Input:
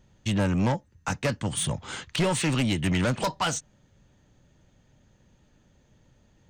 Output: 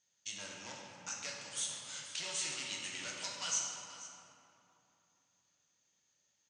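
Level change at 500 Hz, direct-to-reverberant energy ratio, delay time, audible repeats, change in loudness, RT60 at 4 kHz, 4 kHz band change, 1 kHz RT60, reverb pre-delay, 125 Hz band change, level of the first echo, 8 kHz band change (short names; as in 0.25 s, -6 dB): -22.5 dB, -3.5 dB, 0.483 s, 1, -12.5 dB, 1.7 s, -7.0 dB, 2.9 s, 6 ms, -33.5 dB, -14.0 dB, -3.0 dB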